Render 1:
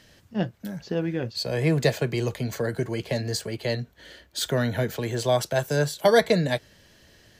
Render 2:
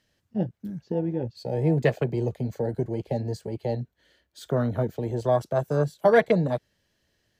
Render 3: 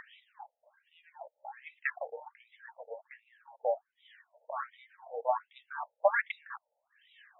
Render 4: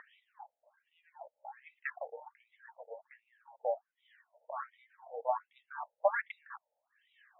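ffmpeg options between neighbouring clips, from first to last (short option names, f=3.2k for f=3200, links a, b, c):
-af "afwtdn=0.0398"
-af "acompressor=mode=upward:threshold=-33dB:ratio=2.5,aphaser=in_gain=1:out_gain=1:delay=3.8:decay=0.51:speed=0.32:type=triangular,afftfilt=real='re*between(b*sr/1024,620*pow(2800/620,0.5+0.5*sin(2*PI*1.3*pts/sr))/1.41,620*pow(2800/620,0.5+0.5*sin(2*PI*1.3*pts/sr))*1.41)':imag='im*between(b*sr/1024,620*pow(2800/620,0.5+0.5*sin(2*PI*1.3*pts/sr))/1.41,620*pow(2800/620,0.5+0.5*sin(2*PI*1.3*pts/sr))*1.41)':win_size=1024:overlap=0.75"
-af "bandpass=f=780:t=q:w=0.56:csg=0,volume=-2.5dB"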